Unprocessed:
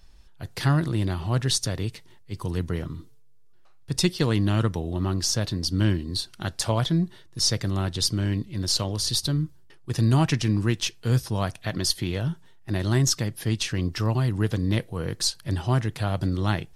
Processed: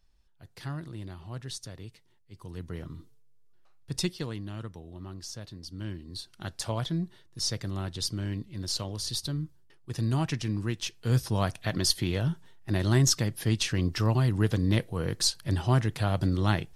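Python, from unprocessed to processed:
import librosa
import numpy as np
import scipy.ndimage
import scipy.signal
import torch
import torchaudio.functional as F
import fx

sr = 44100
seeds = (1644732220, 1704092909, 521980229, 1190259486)

y = fx.gain(x, sr, db=fx.line((2.38, -15.0), (2.95, -6.5), (4.0, -6.5), (4.43, -16.0), (5.78, -16.0), (6.46, -7.5), (10.8, -7.5), (11.27, -1.0)))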